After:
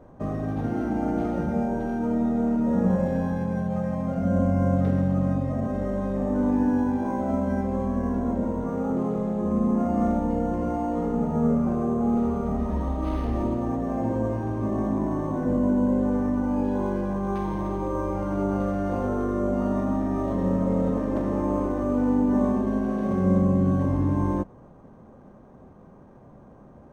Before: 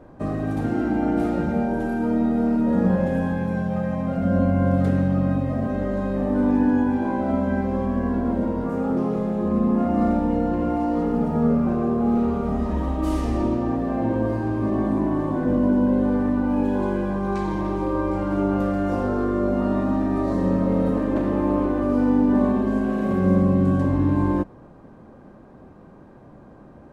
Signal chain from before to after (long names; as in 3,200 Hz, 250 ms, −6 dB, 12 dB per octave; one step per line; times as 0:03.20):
thirty-one-band graphic EQ 315 Hz −5 dB, 1,600 Hz −4 dB, 2,500 Hz −3 dB
linearly interpolated sample-rate reduction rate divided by 6×
level −2 dB